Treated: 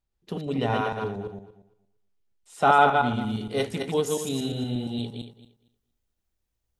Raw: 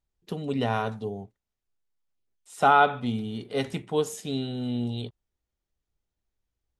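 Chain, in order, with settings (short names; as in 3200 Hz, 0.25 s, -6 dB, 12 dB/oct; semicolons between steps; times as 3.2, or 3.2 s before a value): regenerating reverse delay 0.116 s, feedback 41%, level -3 dB; high shelf 8100 Hz -6 dB, from 3.21 s +6 dB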